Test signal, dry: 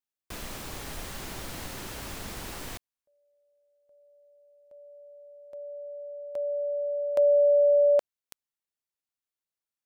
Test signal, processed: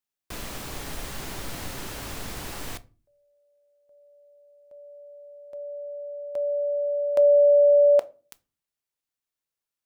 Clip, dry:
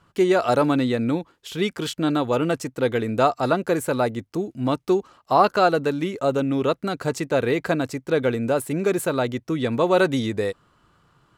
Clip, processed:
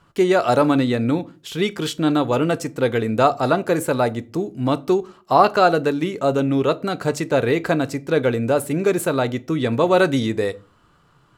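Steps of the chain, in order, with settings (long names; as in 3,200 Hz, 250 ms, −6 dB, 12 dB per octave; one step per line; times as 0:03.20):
rectangular room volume 180 cubic metres, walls furnished, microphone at 0.31 metres
level +2.5 dB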